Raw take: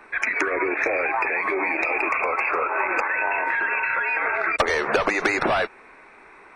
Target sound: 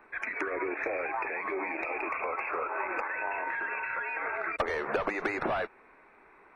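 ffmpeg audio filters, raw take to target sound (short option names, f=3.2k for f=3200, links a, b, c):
-af "equalizer=f=6.5k:w=0.55:g=-12,volume=-8dB"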